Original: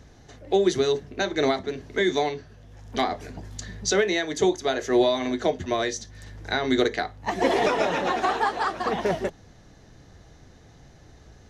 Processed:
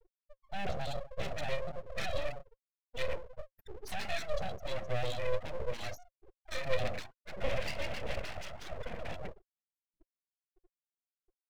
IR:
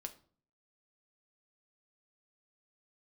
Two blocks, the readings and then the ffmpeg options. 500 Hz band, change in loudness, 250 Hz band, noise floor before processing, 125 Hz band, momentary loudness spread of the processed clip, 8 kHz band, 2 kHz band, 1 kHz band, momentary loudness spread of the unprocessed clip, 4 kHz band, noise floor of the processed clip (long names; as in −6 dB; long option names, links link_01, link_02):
−14.5 dB, −14.5 dB, −22.5 dB, −52 dBFS, −5.5 dB, 11 LU, −18.0 dB, −12.5 dB, −16.5 dB, 12 LU, −13.0 dB, below −85 dBFS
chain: -filter_complex "[0:a]aphaser=in_gain=1:out_gain=1:delay=3.3:decay=0.59:speed=1.6:type=sinusoidal,lowshelf=frequency=120:width_type=q:width=1.5:gain=-10.5[link_01];[1:a]atrim=start_sample=2205[link_02];[link_01][link_02]afir=irnorm=-1:irlink=0,afftfilt=real='re*gte(hypot(re,im),0.0398)':imag='im*gte(hypot(re,im),0.0398)':win_size=1024:overlap=0.75,apsyclip=9.5dB,asoftclip=type=tanh:threshold=-15dB,asplit=3[link_03][link_04][link_05];[link_03]bandpass=frequency=270:width_type=q:width=8,volume=0dB[link_06];[link_04]bandpass=frequency=2290:width_type=q:width=8,volume=-6dB[link_07];[link_05]bandpass=frequency=3010:width_type=q:width=8,volume=-9dB[link_08];[link_06][link_07][link_08]amix=inputs=3:normalize=0,aeval=exprs='abs(val(0))':channel_layout=same"